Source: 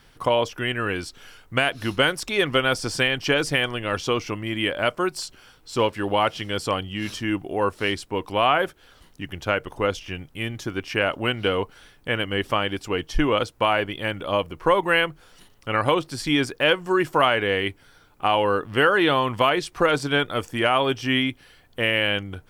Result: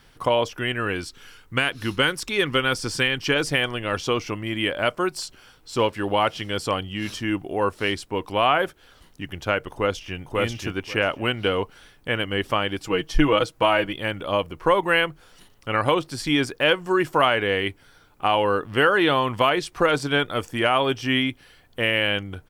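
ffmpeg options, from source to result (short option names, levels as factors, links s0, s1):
-filter_complex "[0:a]asettb=1/sr,asplit=3[s0][s1][s2];[s0]atrim=end=1.024[s3];[s1]atrim=start=1.02:end=3.36,asetpts=PTS-STARTPTS,afade=t=in:d=0.004:c=qsin,afade=t=out:st=2.336:d=0.004:c=qsin,equalizer=f=660:w=3.2:g=-9[s4];[s2]atrim=start=3.356[s5];[s3][s4]acrossfade=d=0.004:c1=hsin:c2=qsin[s6];[s6][s5]acrossfade=d=0.004:c1=qsin:c2=hsin,asplit=2[s7][s8];[s8]afade=t=in:st=9.72:d=0.01,afade=t=out:st=10.17:d=0.01,aecho=0:1:540|1080|1620:0.891251|0.133688|0.0200531[s9];[s7][s9]amix=inputs=2:normalize=0,asettb=1/sr,asplit=3[s10][s11][s12];[s10]atrim=end=12.804[s13];[s11]atrim=start=12.8:end=13.93,asetpts=PTS-STARTPTS,afade=t=in:d=0.004:c=qsin,afade=t=out:st=1.126:d=0.004:c=qsin,aecho=1:1:6.2:0.65,atrim=end_sample=49833[s14];[s12]atrim=start=13.926[s15];[s13][s14]acrossfade=d=0.004:c1=hsin:c2=qsin[s16];[s16][s15]acrossfade=d=0.004:c1=qsin:c2=hsin"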